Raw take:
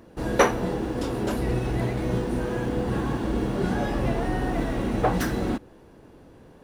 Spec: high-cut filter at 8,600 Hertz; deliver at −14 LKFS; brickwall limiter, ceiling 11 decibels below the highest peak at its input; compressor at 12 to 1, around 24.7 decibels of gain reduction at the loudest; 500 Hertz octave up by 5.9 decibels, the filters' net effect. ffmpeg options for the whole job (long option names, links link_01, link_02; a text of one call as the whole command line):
ffmpeg -i in.wav -af "lowpass=8600,equalizer=frequency=500:width_type=o:gain=7,acompressor=threshold=-35dB:ratio=12,volume=29dB,alimiter=limit=-5dB:level=0:latency=1" out.wav